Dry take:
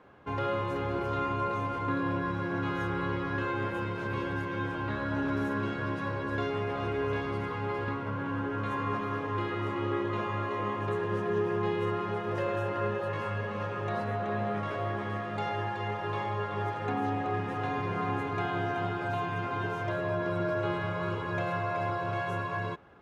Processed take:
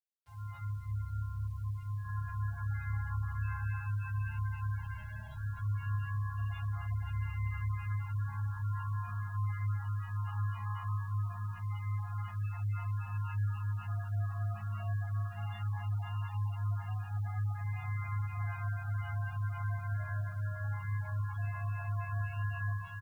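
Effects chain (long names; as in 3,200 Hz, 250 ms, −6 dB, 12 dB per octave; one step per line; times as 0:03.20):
fade in at the beginning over 0.96 s
0:04.84–0:05.36: phaser with its sweep stopped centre 300 Hz, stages 6
in parallel at +1 dB: brickwall limiter −25.5 dBFS, peak gain reduction 7 dB
on the sum: elliptic band-stop filter 200–680 Hz, stop band 70 dB
0:00.58–0:02.05: parametric band 720 Hz −14 dB 2.9 octaves
reverb reduction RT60 0.5 s
drawn EQ curve 100 Hz 0 dB, 180 Hz −20 dB, 470 Hz −26 dB, 720 Hz −14 dB, 2,400 Hz −11 dB, 3,700 Hz −12 dB, 7,500 Hz −8 dB
repeating echo 524 ms, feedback 22%, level −8 dB
four-comb reverb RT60 1.6 s, combs from 26 ms, DRR −6.5 dB
gate on every frequency bin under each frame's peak −25 dB strong
bit reduction 10 bits
level −7.5 dB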